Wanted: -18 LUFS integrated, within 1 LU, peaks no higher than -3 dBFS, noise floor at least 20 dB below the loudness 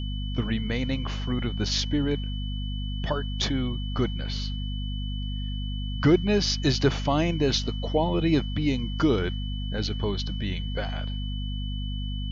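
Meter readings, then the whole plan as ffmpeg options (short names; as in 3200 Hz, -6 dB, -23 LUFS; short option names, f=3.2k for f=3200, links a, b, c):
hum 50 Hz; harmonics up to 250 Hz; hum level -28 dBFS; steady tone 3000 Hz; tone level -40 dBFS; loudness -27.5 LUFS; peak -9.0 dBFS; loudness target -18.0 LUFS
-> -af "bandreject=f=50:t=h:w=6,bandreject=f=100:t=h:w=6,bandreject=f=150:t=h:w=6,bandreject=f=200:t=h:w=6,bandreject=f=250:t=h:w=6"
-af "bandreject=f=3k:w=30"
-af "volume=9.5dB,alimiter=limit=-3dB:level=0:latency=1"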